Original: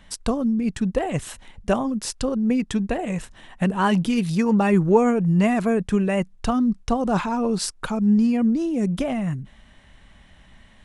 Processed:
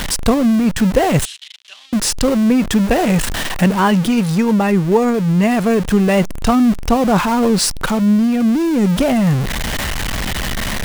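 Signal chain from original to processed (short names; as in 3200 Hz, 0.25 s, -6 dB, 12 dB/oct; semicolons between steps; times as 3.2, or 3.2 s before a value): zero-crossing step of -24.5 dBFS; vocal rider within 4 dB 0.5 s; 1.25–1.93 ladder band-pass 3900 Hz, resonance 50%; gain +5.5 dB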